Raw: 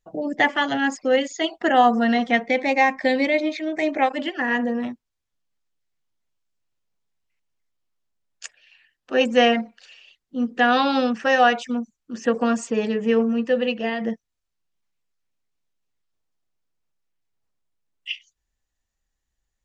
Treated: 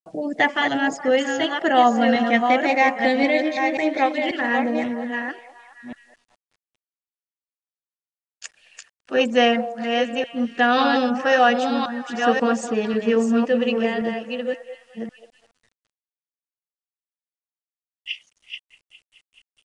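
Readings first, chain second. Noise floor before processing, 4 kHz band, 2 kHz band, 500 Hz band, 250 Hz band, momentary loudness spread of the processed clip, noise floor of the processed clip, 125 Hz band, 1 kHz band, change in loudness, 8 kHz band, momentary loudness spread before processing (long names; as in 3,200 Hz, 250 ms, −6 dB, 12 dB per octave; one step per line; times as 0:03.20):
−80 dBFS, +1.5 dB, +1.5 dB, +1.5 dB, +1.5 dB, 16 LU, below −85 dBFS, can't be measured, +1.5 dB, +1.0 dB, +1.0 dB, 15 LU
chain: delay that plays each chunk backwards 539 ms, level −5 dB
on a send: echo through a band-pass that steps 210 ms, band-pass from 640 Hz, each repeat 0.7 octaves, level −10.5 dB
on the sum: bit-depth reduction 10 bits, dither none
downsampling to 22,050 Hz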